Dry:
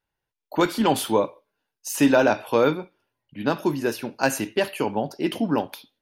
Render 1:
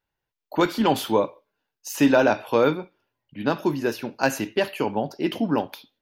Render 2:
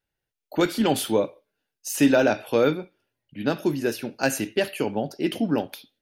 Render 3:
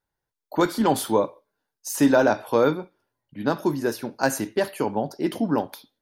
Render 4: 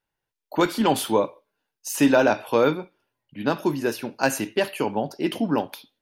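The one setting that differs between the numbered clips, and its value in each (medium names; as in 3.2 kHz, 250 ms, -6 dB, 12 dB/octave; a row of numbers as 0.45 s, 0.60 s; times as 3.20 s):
peaking EQ, frequency: 9.4 kHz, 1 kHz, 2.7 kHz, 66 Hz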